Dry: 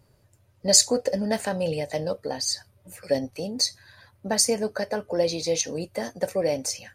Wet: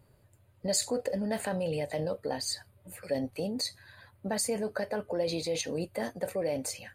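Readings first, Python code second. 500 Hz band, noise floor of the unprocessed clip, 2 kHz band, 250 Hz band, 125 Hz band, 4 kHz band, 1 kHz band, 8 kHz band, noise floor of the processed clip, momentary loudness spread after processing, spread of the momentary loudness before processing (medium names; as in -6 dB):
-6.0 dB, -63 dBFS, -4.5 dB, -4.5 dB, -4.0 dB, -10.0 dB, -5.5 dB, -11.5 dB, -64 dBFS, 6 LU, 13 LU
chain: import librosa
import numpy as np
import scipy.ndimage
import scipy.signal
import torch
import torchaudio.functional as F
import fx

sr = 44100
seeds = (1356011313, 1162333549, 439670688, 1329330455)

p1 = fx.peak_eq(x, sr, hz=5700.0, db=-15.0, octaves=0.39)
p2 = fx.over_compress(p1, sr, threshold_db=-30.0, ratio=-1.0)
p3 = p1 + F.gain(torch.from_numpy(p2), -1.0).numpy()
y = F.gain(torch.from_numpy(p3), -9.0).numpy()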